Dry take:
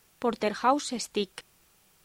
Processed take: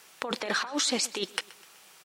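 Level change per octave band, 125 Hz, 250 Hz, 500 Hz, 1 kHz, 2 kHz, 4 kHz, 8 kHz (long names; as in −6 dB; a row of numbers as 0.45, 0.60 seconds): −4.5, −3.5, −5.5, −8.0, +6.0, +7.5, +8.0 decibels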